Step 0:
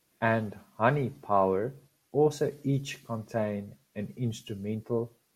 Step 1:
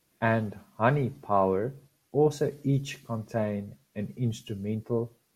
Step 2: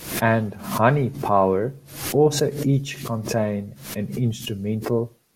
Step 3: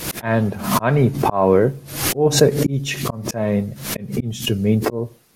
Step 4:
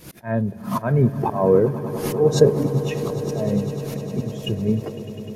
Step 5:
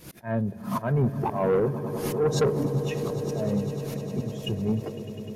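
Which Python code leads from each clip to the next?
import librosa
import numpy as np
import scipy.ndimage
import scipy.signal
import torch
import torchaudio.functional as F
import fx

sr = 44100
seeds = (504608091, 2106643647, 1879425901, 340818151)

y1 = fx.low_shelf(x, sr, hz=220.0, db=4.0)
y2 = fx.pre_swell(y1, sr, db_per_s=96.0)
y2 = F.gain(torch.from_numpy(y2), 6.0).numpy()
y3 = fx.auto_swell(y2, sr, attack_ms=266.0)
y3 = F.gain(torch.from_numpy(y3), 8.5).numpy()
y4 = fx.fade_out_tail(y3, sr, length_s=0.77)
y4 = fx.echo_swell(y4, sr, ms=101, loudest=8, wet_db=-13.5)
y4 = fx.spectral_expand(y4, sr, expansion=1.5)
y4 = F.gain(torch.from_numpy(y4), -1.0).numpy()
y5 = 10.0 ** (-13.5 / 20.0) * np.tanh(y4 / 10.0 ** (-13.5 / 20.0))
y5 = F.gain(torch.from_numpy(y5), -3.5).numpy()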